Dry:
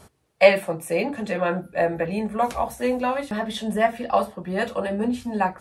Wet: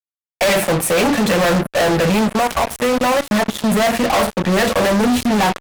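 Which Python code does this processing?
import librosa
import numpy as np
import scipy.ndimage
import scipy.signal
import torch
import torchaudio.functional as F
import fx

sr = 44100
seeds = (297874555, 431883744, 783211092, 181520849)

y = fx.level_steps(x, sr, step_db=14, at=(2.28, 3.69), fade=0.02)
y = fx.fuzz(y, sr, gain_db=40.0, gate_db=-39.0)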